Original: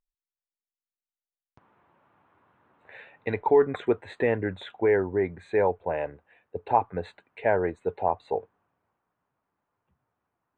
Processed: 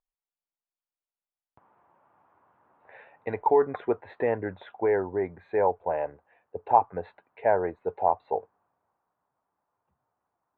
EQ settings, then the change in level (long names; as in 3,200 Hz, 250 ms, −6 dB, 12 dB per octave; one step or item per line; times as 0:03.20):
high-frequency loss of the air 270 metres
parametric band 820 Hz +10 dB 1.7 octaves
−6.0 dB